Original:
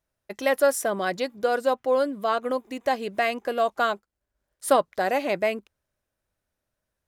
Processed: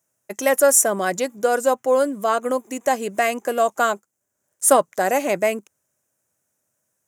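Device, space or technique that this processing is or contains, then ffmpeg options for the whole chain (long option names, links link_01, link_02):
budget condenser microphone: -af "highpass=frequency=110:width=0.5412,highpass=frequency=110:width=1.3066,highshelf=frequency=5400:width_type=q:width=3:gain=8,volume=4.5dB"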